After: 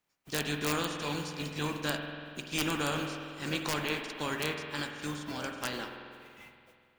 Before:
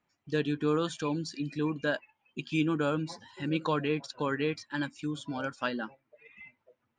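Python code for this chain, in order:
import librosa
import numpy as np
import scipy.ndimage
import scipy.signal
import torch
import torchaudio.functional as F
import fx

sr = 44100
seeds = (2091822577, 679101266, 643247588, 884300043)

y = fx.spec_flatten(x, sr, power=0.46)
y = (np.mod(10.0 ** (16.0 / 20.0) * y + 1.0, 2.0) - 1.0) / 10.0 ** (16.0 / 20.0)
y = fx.rev_spring(y, sr, rt60_s=2.3, pass_ms=(47,), chirp_ms=65, drr_db=4.0)
y = y * librosa.db_to_amplitude(-4.0)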